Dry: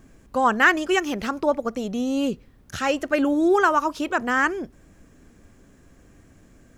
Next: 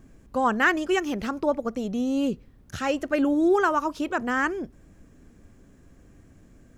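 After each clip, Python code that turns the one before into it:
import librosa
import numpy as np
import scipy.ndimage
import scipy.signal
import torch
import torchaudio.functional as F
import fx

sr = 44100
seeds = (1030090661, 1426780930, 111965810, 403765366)

y = fx.low_shelf(x, sr, hz=470.0, db=5.5)
y = y * librosa.db_to_amplitude(-5.0)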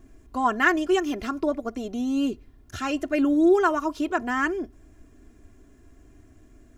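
y = x + 0.75 * np.pad(x, (int(2.9 * sr / 1000.0), 0))[:len(x)]
y = y * librosa.db_to_amplitude(-2.0)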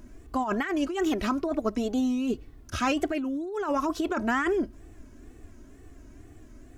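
y = fx.over_compress(x, sr, threshold_db=-27.0, ratio=-1.0)
y = fx.wow_flutter(y, sr, seeds[0], rate_hz=2.1, depth_cents=140.0)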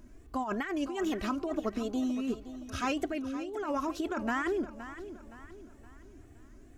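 y = fx.echo_feedback(x, sr, ms=518, feedback_pct=41, wet_db=-13)
y = y * librosa.db_to_amplitude(-5.5)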